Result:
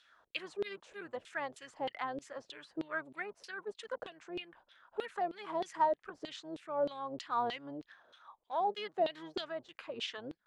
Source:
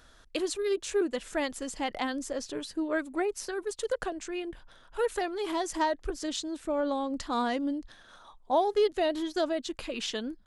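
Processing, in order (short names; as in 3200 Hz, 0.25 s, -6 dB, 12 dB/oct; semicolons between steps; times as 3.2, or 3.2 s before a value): octaver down 1 oct, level -4 dB; LFO band-pass saw down 3.2 Hz 440–3500 Hz; gain +1 dB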